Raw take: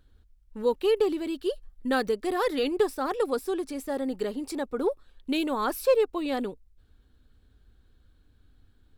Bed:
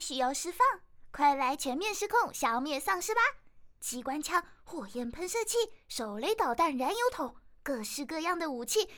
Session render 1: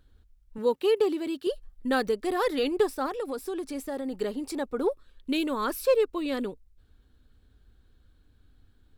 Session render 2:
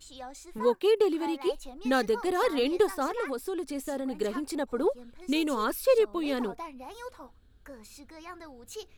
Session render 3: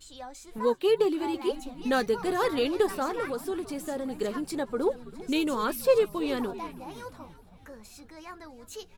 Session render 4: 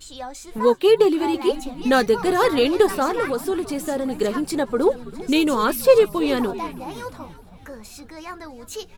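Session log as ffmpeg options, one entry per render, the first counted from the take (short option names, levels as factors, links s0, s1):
-filter_complex "[0:a]asettb=1/sr,asplit=3[s0][s1][s2];[s0]atrim=end=0.584[s3];[s1]atrim=start=0.58:end=1.47,asetpts=PTS-STARTPTS,afade=t=in:d=0.004:c=qsin,afade=t=out:st=0.886:d=0.004:c=qsin,highpass=f=91:w=0.5412,highpass=f=91:w=1.3066[s4];[s2]atrim=start=1.466[s5];[s3][s4]acrossfade=d=0.004:c1=hsin:c2=qsin[s6];[s6][s5]acrossfade=d=0.004:c1=qsin:c2=hsin,asettb=1/sr,asplit=3[s7][s8][s9];[s7]atrim=end=3.064[s10];[s8]atrim=start=3.06:end=4.17,asetpts=PTS-STARTPTS,afade=t=in:d=0.004:c=qsin,afade=t=out:st=1.106:d=0.004:c=qsin,acompressor=threshold=0.0398:ratio=6:attack=3.2:release=140:knee=1:detection=peak[s11];[s9]atrim=start=4.166[s12];[s10][s11]acrossfade=d=0.004:c1=hsin:c2=qsin[s13];[s13][s12]acrossfade=d=0.004:c1=qsin:c2=hsin,asettb=1/sr,asplit=3[s14][s15][s16];[s14]atrim=end=4.904[s17];[s15]atrim=start=4.9:end=6.46,asetpts=PTS-STARTPTS,afade=t=in:d=0.004:c=qsin,afade=t=out:st=1.556:d=0.004:c=qsin,equalizer=f=770:t=o:w=0.3:g=-10.5[s18];[s16]atrim=start=6.456[s19];[s17][s18]acrossfade=d=0.004:c1=hsin:c2=qsin[s20];[s20][s19]acrossfade=d=0.004:c1=qsin:c2=hsin"
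-filter_complex "[1:a]volume=0.237[s0];[0:a][s0]amix=inputs=2:normalize=0"
-filter_complex "[0:a]asplit=2[s0][s1];[s1]adelay=13,volume=0.224[s2];[s0][s2]amix=inputs=2:normalize=0,asplit=6[s3][s4][s5][s6][s7][s8];[s4]adelay=327,afreqshift=-70,volume=0.133[s9];[s5]adelay=654,afreqshift=-140,volume=0.0776[s10];[s6]adelay=981,afreqshift=-210,volume=0.0447[s11];[s7]adelay=1308,afreqshift=-280,volume=0.026[s12];[s8]adelay=1635,afreqshift=-350,volume=0.0151[s13];[s3][s9][s10][s11][s12][s13]amix=inputs=6:normalize=0"
-af "volume=2.66"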